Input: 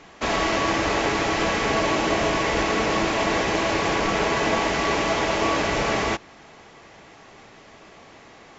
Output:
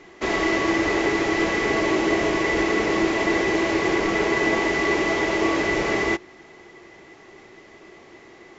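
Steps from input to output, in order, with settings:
hollow resonant body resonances 360/2,000 Hz, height 14 dB, ringing for 50 ms
level −3.5 dB

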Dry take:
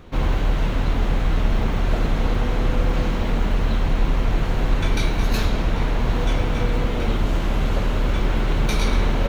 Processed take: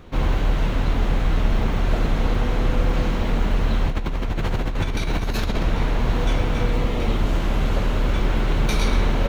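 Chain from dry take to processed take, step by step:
0:03.90–0:05.63: compressor whose output falls as the input rises −22 dBFS, ratio −1
0:06.71–0:07.17: notch filter 1,500 Hz, Q 9.9

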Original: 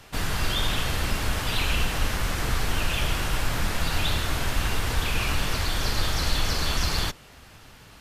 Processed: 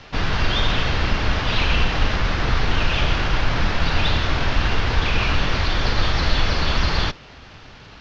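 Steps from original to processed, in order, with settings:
variable-slope delta modulation 32 kbit/s
low-pass filter 4,800 Hz 12 dB per octave
level +6.5 dB

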